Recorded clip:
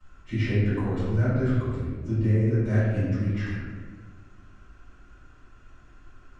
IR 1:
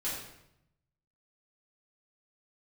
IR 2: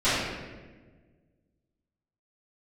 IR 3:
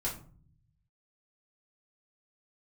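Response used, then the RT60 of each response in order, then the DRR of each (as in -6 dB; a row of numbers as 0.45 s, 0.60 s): 2; 0.80 s, 1.4 s, 0.45 s; -9.5 dB, -17.5 dB, -6.0 dB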